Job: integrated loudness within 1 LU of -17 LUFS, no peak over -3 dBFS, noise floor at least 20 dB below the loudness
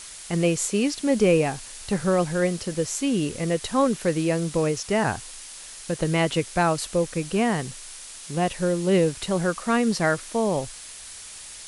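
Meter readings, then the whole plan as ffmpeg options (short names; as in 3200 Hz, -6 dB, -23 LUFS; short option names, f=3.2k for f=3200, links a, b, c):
noise floor -41 dBFS; noise floor target -44 dBFS; loudness -24.0 LUFS; peak -8.5 dBFS; loudness target -17.0 LUFS
-> -af "afftdn=nr=6:nf=-41"
-af "volume=7dB,alimiter=limit=-3dB:level=0:latency=1"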